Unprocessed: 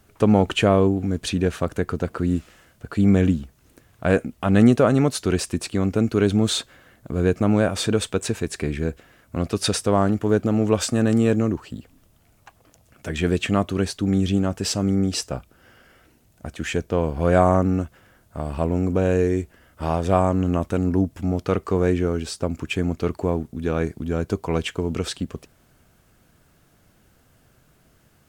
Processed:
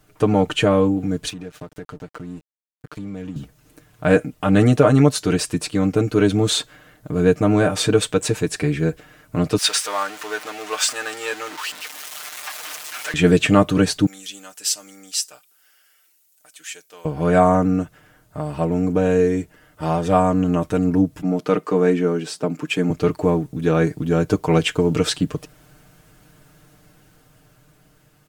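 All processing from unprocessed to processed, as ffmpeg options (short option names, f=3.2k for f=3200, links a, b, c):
-filter_complex "[0:a]asettb=1/sr,asplit=3[a][b][c];[a]atrim=end=1.294[d];[b]atrim=start=1.29:end=3.36,asetpts=PTS-STARTPTS,afade=t=in:d=0.004:c=qsin,afade=t=out:st=2.066:d=0.004:c=qsin,aeval=exprs='sgn(val(0))*max(abs(val(0))-0.0158,0)':c=same,acompressor=threshold=-33dB:ratio=4:attack=3.2:release=140:knee=1:detection=peak[e];[c]atrim=start=3.356[f];[d][e]acrossfade=d=0.004:c1=hsin:c2=qsin[g];[g][f]acrossfade=d=0.004:c1=qsin:c2=hsin,asettb=1/sr,asplit=3[h][i][j];[h]atrim=end=9.584[k];[i]atrim=start=9.58:end=13.14,asetpts=PTS-STARTPTS,afade=t=in:d=0.004:c=qsin,afade=t=out:st=3.556:d=0.004:c=qsin,aeval=exprs='val(0)+0.5*0.0398*sgn(val(0))':c=same,highpass=1.2k,highshelf=f=10k:g=-6.5[l];[j]atrim=start=13.136[m];[k][l]acrossfade=d=0.004:c1=hsin:c2=qsin[n];[n][m]acrossfade=d=0.004:c1=qsin:c2=hsin,asettb=1/sr,asplit=3[o][p][q];[o]atrim=end=14.064[r];[p]atrim=start=14.06:end=17.05,asetpts=PTS-STARTPTS,afade=t=in:d=0.004:c=qsin,afade=t=out:st=2.986:d=0.004:c=qsin,highpass=f=280:p=1,aderivative[s];[q]atrim=start=17.046[t];[r][s]acrossfade=d=0.004:c1=hsin:c2=qsin[u];[u][t]acrossfade=d=0.004:c1=qsin:c2=hsin,asettb=1/sr,asplit=3[v][w][x];[v]atrim=end=21.224[y];[w]atrim=start=21.22:end=22.9,asetpts=PTS-STARTPTS,afade=t=in:d=0.004:c=qsin,afade=t=out:st=1.676:d=0.004:c=qsin,highpass=f=160:w=0.5412,highpass=f=160:w=1.3066,adynamicequalizer=threshold=0.00708:dfrequency=3400:dqfactor=0.7:tfrequency=3400:tqfactor=0.7:attack=5:release=100:ratio=0.375:range=2:mode=cutabove:tftype=highshelf[z];[x]atrim=start=22.896[aa];[y][z]acrossfade=d=0.004:c1=hsin:c2=qsin[ab];[ab][aa]acrossfade=d=0.004:c1=qsin:c2=hsin,aecho=1:1:6.6:0.82,dynaudnorm=f=950:g=5:m=11.5dB,volume=-1dB"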